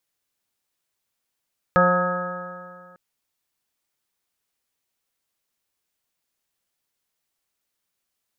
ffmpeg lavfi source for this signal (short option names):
-f lavfi -i "aevalsrc='0.1*pow(10,-3*t/2.07)*sin(2*PI*178.07*t)+0.0251*pow(10,-3*t/2.07)*sin(2*PI*356.58*t)+0.15*pow(10,-3*t/2.07)*sin(2*PI*535.97*t)+0.0501*pow(10,-3*t/2.07)*sin(2*PI*716.66*t)+0.0501*pow(10,-3*t/2.07)*sin(2*PI*899.08*t)+0.0158*pow(10,-3*t/2.07)*sin(2*PI*1083.65*t)+0.158*pow(10,-3*t/2.07)*sin(2*PI*1270.79*t)+0.0211*pow(10,-3*t/2.07)*sin(2*PI*1460.89*t)+0.0794*pow(10,-3*t/2.07)*sin(2*PI*1654.35*t)':d=1.2:s=44100"